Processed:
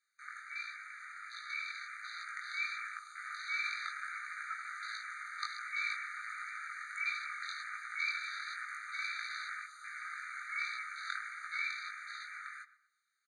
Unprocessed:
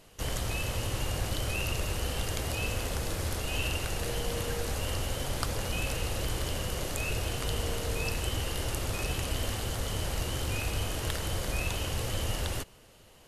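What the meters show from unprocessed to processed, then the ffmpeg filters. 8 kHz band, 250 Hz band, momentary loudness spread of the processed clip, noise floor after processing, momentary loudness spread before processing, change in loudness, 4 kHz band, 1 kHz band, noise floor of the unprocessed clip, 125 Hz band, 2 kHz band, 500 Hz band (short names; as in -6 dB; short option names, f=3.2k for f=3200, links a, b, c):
-18.5 dB, under -40 dB, 9 LU, -73 dBFS, 2 LU, -7.0 dB, -11.5 dB, -3.5 dB, -56 dBFS, under -40 dB, +1.0 dB, under -40 dB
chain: -filter_complex "[0:a]afwtdn=0.01,highshelf=f=2.1k:g=-11.5,dynaudnorm=f=490:g=9:m=5dB,afreqshift=-270,aresample=22050,aresample=44100,flanger=delay=17:depth=5.5:speed=1.4,asplit=2[a][b];[b]adelay=120,lowpass=f=2k:p=1,volume=-15dB,asplit=2[c][d];[d]adelay=120,lowpass=f=2k:p=1,volume=0.41,asplit=2[e][f];[f]adelay=120,lowpass=f=2k:p=1,volume=0.41,asplit=2[g][h];[h]adelay=120,lowpass=f=2k:p=1,volume=0.41[i];[a][c][e][g][i]amix=inputs=5:normalize=0,afftfilt=real='re*eq(mod(floor(b*sr/1024/1200),2),1)':imag='im*eq(mod(floor(b*sr/1024/1200),2),1)':win_size=1024:overlap=0.75,volume=8.5dB"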